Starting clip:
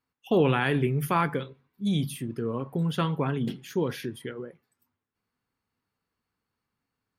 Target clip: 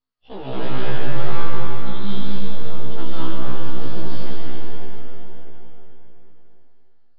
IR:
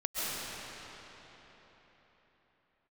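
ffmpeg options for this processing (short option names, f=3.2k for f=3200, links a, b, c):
-filter_complex "[0:a]equalizer=f=2.3k:t=o:w=0.38:g=-10,asplit=2[a][b];[b]acompressor=threshold=-33dB:ratio=16,volume=1dB[c];[a][c]amix=inputs=2:normalize=0,crystalizer=i=3:c=0,aeval=exprs='max(val(0),0)':c=same[d];[1:a]atrim=start_sample=2205[e];[d][e]afir=irnorm=-1:irlink=0,aresample=11025,aresample=44100,afftfilt=real='re*1.73*eq(mod(b,3),0)':imag='im*1.73*eq(mod(b,3),0)':win_size=2048:overlap=0.75,volume=-7dB"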